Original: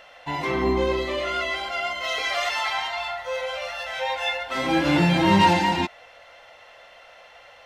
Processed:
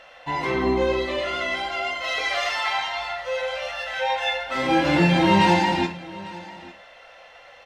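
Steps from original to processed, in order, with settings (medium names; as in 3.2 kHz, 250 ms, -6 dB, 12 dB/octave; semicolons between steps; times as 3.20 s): treble shelf 10 kHz -9 dB; on a send: delay 849 ms -19.5 dB; on the sum: gated-style reverb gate 140 ms falling, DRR 4.5 dB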